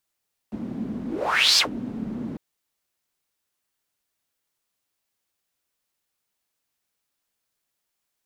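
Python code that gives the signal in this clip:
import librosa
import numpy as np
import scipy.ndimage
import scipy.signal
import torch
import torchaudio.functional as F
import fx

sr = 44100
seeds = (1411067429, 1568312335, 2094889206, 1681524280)

y = fx.whoosh(sr, seeds[0], length_s=1.85, peak_s=1.06, rise_s=0.55, fall_s=0.12, ends_hz=230.0, peak_hz=4900.0, q=5.8, swell_db=14.5)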